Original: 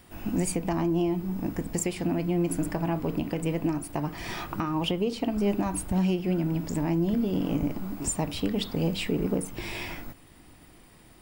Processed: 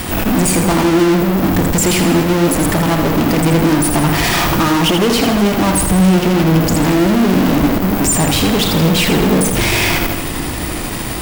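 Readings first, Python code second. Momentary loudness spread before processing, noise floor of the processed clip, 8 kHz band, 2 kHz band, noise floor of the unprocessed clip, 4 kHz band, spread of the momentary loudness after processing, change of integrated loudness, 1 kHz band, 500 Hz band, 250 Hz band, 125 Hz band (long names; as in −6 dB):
7 LU, −21 dBFS, +18.0 dB, +21.5 dB, −54 dBFS, +19.5 dB, 3 LU, +15.5 dB, +18.5 dB, +15.0 dB, +14.5 dB, +15.0 dB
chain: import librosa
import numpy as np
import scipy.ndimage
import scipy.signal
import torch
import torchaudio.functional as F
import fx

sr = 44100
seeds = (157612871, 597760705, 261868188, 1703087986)

p1 = fx.fuzz(x, sr, gain_db=51.0, gate_db=-59.0)
p2 = x + F.gain(torch.from_numpy(p1), -5.0).numpy()
p3 = fx.echo_feedback(p2, sr, ms=81, feedback_pct=56, wet_db=-7.0)
y = F.gain(torch.from_numpy(p3), 3.0).numpy()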